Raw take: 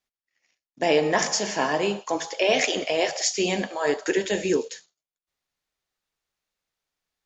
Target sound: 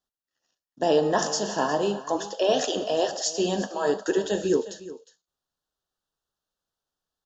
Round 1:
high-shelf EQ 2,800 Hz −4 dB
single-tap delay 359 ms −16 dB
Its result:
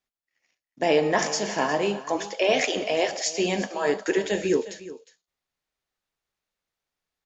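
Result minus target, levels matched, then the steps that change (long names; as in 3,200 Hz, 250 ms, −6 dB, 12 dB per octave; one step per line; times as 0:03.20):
2,000 Hz band +6.0 dB
add first: Butterworth band-reject 2,200 Hz, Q 1.8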